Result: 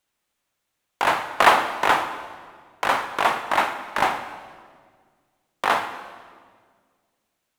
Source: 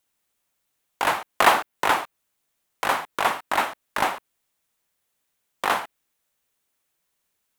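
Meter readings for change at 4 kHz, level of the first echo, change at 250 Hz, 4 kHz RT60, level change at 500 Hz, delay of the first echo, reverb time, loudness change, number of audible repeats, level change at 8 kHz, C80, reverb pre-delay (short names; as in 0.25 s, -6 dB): +1.0 dB, none, +2.0 dB, 1.5 s, +2.5 dB, none, 1.7 s, +2.0 dB, none, -2.5 dB, 11.0 dB, 11 ms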